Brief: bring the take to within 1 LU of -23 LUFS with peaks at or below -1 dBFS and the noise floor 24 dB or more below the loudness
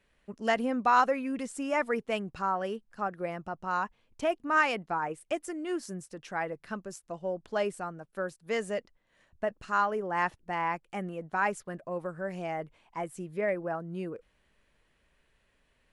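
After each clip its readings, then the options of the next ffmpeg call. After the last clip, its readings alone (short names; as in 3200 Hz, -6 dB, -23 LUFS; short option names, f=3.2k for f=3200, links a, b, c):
loudness -32.5 LUFS; peak -12.0 dBFS; loudness target -23.0 LUFS
-> -af "volume=9.5dB"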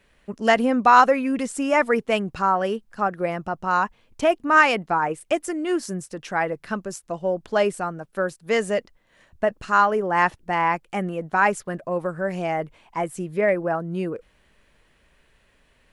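loudness -23.0 LUFS; peak -2.5 dBFS; noise floor -62 dBFS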